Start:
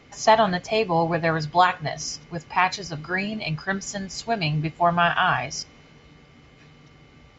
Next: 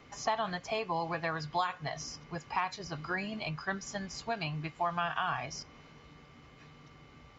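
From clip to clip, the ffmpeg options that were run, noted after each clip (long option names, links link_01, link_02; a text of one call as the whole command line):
ffmpeg -i in.wav -filter_complex "[0:a]equalizer=frequency=1100:width=2.4:gain=6,acrossover=split=870|2000|6700[link_01][link_02][link_03][link_04];[link_01]acompressor=threshold=-32dB:ratio=4[link_05];[link_02]acompressor=threshold=-32dB:ratio=4[link_06];[link_03]acompressor=threshold=-38dB:ratio=4[link_07];[link_04]acompressor=threshold=-55dB:ratio=4[link_08];[link_05][link_06][link_07][link_08]amix=inputs=4:normalize=0,volume=-5dB" out.wav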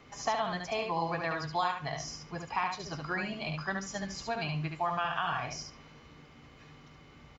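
ffmpeg -i in.wav -af "aecho=1:1:72|144|216:0.596|0.101|0.0172" out.wav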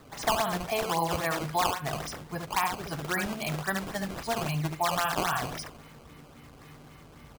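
ffmpeg -i in.wav -af "acrusher=samples=14:mix=1:aa=0.000001:lfo=1:lforange=22.4:lforate=3.7,volume=4dB" out.wav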